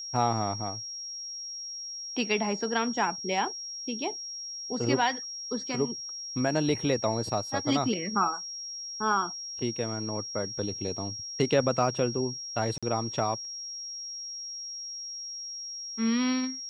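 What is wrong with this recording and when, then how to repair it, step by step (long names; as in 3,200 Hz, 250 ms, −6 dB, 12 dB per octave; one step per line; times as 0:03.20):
whistle 5,600 Hz −36 dBFS
0:12.78–0:12.83: drop-out 46 ms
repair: notch filter 5,600 Hz, Q 30
repair the gap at 0:12.78, 46 ms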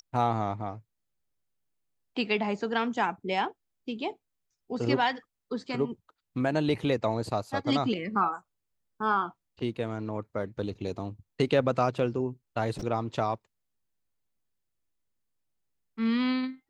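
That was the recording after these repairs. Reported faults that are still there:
none of them is left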